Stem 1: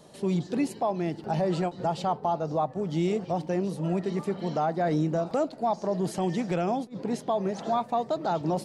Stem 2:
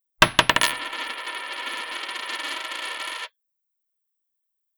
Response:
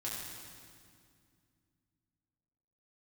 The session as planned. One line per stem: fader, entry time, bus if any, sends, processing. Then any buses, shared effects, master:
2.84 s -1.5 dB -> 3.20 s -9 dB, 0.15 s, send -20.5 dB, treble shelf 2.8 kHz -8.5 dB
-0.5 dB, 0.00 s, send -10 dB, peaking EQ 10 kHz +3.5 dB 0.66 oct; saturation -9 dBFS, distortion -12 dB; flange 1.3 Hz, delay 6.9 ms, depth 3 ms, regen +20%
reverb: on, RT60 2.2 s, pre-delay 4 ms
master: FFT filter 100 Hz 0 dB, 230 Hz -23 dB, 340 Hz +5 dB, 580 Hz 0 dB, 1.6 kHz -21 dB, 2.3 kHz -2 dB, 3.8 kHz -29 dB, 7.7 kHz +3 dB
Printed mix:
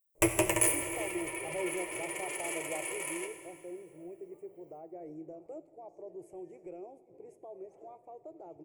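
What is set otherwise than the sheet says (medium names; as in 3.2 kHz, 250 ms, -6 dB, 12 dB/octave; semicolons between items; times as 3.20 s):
stem 1 -1.5 dB -> -11.0 dB; reverb return +6.0 dB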